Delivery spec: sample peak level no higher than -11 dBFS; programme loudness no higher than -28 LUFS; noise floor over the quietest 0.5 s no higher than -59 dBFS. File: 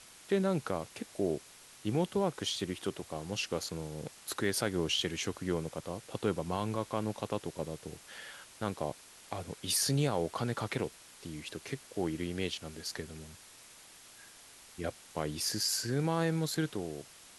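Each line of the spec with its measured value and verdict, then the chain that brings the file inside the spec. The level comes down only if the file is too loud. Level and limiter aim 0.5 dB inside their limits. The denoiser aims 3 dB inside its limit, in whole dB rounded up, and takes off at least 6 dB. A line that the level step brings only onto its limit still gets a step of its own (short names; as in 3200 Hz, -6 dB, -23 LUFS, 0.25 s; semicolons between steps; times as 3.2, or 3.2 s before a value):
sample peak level -16.5 dBFS: OK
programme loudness -35.0 LUFS: OK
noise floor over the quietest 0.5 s -55 dBFS: fail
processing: denoiser 7 dB, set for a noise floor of -55 dBFS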